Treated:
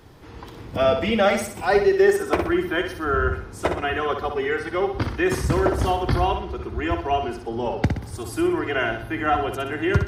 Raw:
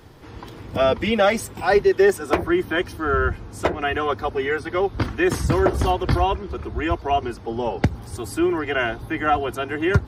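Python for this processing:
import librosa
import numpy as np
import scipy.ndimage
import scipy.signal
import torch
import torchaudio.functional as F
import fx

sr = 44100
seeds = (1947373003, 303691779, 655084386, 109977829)

y = fx.room_flutter(x, sr, wall_m=10.6, rt60_s=0.53)
y = y * 10.0 ** (-2.0 / 20.0)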